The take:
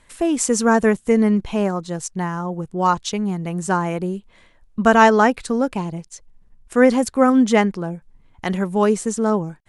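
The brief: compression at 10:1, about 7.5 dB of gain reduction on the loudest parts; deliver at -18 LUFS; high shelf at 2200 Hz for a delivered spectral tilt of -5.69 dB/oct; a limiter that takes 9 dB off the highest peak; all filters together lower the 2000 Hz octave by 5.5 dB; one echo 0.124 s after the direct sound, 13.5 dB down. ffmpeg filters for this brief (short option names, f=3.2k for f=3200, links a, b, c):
-af "equalizer=f=2k:t=o:g=-4,highshelf=f=2.2k:g=-7,acompressor=threshold=-17dB:ratio=10,alimiter=limit=-17.5dB:level=0:latency=1,aecho=1:1:124:0.211,volume=9dB"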